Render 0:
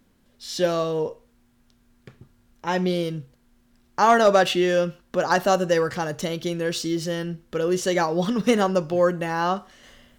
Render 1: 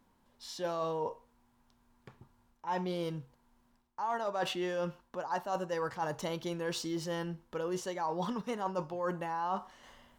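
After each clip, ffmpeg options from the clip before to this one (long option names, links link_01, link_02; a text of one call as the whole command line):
ffmpeg -i in.wav -af "equalizer=frequency=930:width_type=o:width=0.63:gain=14.5,areverse,acompressor=threshold=-22dB:ratio=12,areverse,volume=-9dB" out.wav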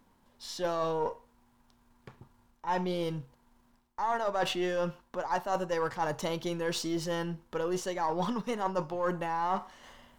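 ffmpeg -i in.wav -af "aeval=exprs='if(lt(val(0),0),0.708*val(0),val(0))':channel_layout=same,volume=5dB" out.wav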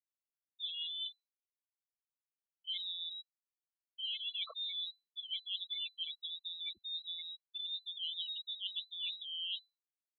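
ffmpeg -i in.wav -af "afftfilt=real='re*gte(hypot(re,im),0.1)':imag='im*gte(hypot(re,im),0.1)':win_size=1024:overlap=0.75,lowpass=frequency=3400:width_type=q:width=0.5098,lowpass=frequency=3400:width_type=q:width=0.6013,lowpass=frequency=3400:width_type=q:width=0.9,lowpass=frequency=3400:width_type=q:width=2.563,afreqshift=-4000,volume=-9dB" out.wav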